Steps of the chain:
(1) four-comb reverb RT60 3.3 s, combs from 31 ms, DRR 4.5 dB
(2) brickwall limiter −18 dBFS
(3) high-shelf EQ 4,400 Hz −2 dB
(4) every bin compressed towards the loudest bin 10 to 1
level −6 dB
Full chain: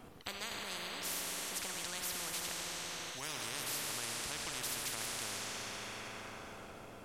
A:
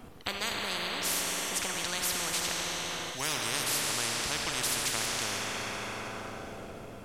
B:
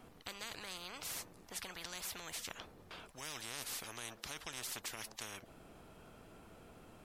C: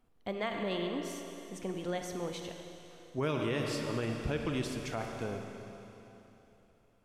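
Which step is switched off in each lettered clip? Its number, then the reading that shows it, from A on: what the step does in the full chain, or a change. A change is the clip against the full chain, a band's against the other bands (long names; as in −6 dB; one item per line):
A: 2, change in momentary loudness spread +2 LU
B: 1, change in momentary loudness spread +8 LU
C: 4, 8 kHz band −19.0 dB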